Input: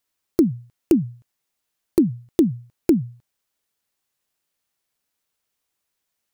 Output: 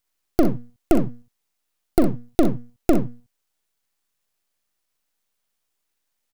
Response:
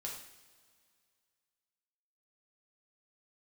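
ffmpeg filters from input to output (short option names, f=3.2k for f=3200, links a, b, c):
-af "aeval=exprs='max(val(0),0)':c=same,aecho=1:1:41|62:0.266|0.335,volume=3.5dB"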